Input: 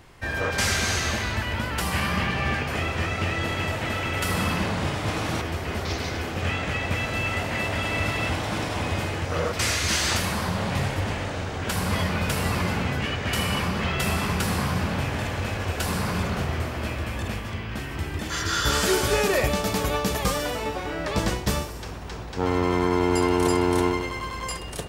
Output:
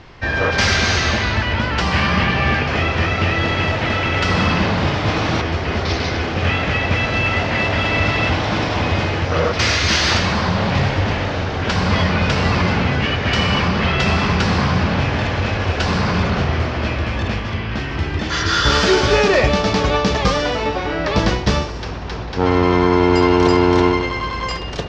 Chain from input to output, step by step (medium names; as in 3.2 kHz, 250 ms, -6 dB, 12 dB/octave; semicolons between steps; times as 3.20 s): steep low-pass 5.7 kHz 36 dB/octave; in parallel at -6.5 dB: saturation -18 dBFS, distortion -17 dB; on the sum: trim +5.5 dB